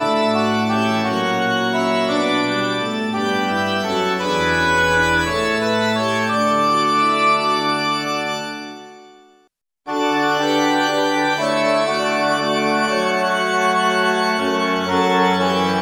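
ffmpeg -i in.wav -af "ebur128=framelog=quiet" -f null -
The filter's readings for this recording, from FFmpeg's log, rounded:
Integrated loudness:
  I:         -17.7 LUFS
  Threshold: -28.0 LUFS
Loudness range:
  LRA:         3.8 LU
  Threshold: -38.1 LUFS
  LRA low:   -20.5 LUFS
  LRA high:  -16.7 LUFS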